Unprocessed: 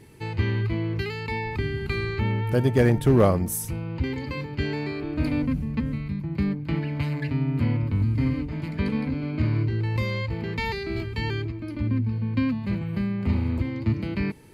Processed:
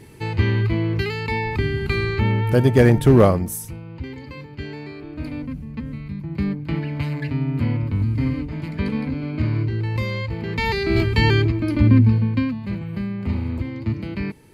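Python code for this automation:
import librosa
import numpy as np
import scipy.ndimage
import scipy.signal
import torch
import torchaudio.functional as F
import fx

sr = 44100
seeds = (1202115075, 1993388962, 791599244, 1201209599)

y = fx.gain(x, sr, db=fx.line((3.18, 5.5), (3.82, -5.0), (5.64, -5.0), (6.46, 2.0), (10.41, 2.0), (11.0, 11.5), (12.1, 11.5), (12.5, 0.0)))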